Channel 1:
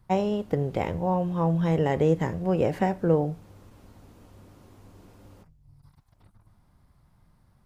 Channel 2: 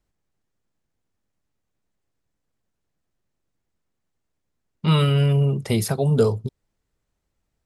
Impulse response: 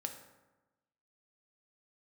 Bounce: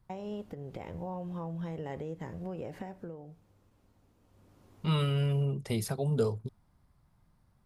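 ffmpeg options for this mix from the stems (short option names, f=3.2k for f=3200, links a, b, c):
-filter_complex "[0:a]acompressor=threshold=-26dB:ratio=6,alimiter=limit=-21.5dB:level=0:latency=1:release=222,volume=2dB,afade=t=out:st=2.88:d=0.36:silence=0.398107,afade=t=in:st=4.22:d=0.65:silence=0.334965[a];[1:a]volume=-10.5dB[b];[a][b]amix=inputs=2:normalize=0"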